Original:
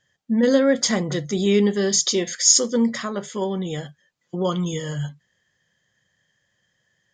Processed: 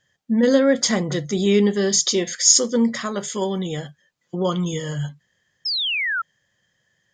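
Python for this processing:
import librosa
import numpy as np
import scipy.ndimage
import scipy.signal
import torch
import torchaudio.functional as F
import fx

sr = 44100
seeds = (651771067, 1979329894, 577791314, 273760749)

y = fx.high_shelf(x, sr, hz=3700.0, db=10.5, at=(3.05, 3.67))
y = fx.spec_paint(y, sr, seeds[0], shape='fall', start_s=5.65, length_s=0.57, low_hz=1300.0, high_hz=5400.0, level_db=-24.0)
y = y * 10.0 ** (1.0 / 20.0)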